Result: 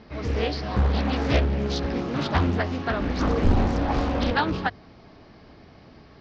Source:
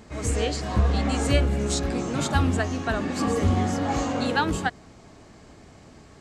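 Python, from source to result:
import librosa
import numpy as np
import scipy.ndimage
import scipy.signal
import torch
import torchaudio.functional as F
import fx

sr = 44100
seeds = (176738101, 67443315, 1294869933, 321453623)

y = fx.octave_divider(x, sr, octaves=2, level_db=2.0, at=(3.0, 4.34))
y = scipy.signal.sosfilt(scipy.signal.butter(12, 5400.0, 'lowpass', fs=sr, output='sos'), y)
y = fx.hum_notches(y, sr, base_hz=50, count=2)
y = fx.doppler_dist(y, sr, depth_ms=0.83)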